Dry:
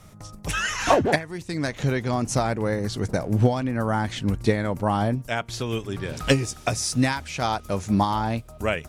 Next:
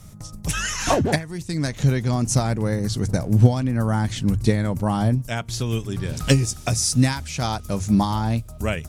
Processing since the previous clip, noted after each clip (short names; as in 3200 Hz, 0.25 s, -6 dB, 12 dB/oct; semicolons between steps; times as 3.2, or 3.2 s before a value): tone controls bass +10 dB, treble +9 dB; notches 50/100 Hz; gain -2.5 dB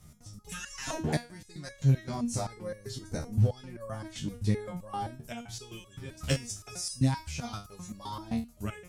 stepped resonator 7.7 Hz 76–560 Hz; gain -1 dB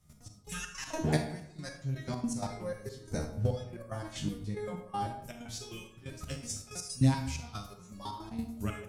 step gate ".xx..xx.x.xxxxx." 161 bpm -12 dB; reverb RT60 0.75 s, pre-delay 36 ms, DRR 6 dB